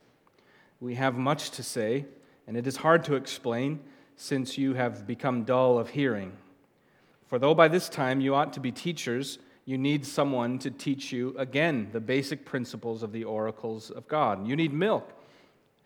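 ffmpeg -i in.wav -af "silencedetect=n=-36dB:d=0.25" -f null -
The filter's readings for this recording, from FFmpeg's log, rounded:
silence_start: 0.00
silence_end: 0.82 | silence_duration: 0.82
silence_start: 2.03
silence_end: 2.48 | silence_duration: 0.44
silence_start: 3.77
silence_end: 4.22 | silence_duration: 0.44
silence_start: 6.29
silence_end: 7.32 | silence_duration: 1.03
silence_start: 9.35
silence_end: 9.68 | silence_duration: 0.33
silence_start: 15.03
silence_end: 15.86 | silence_duration: 0.82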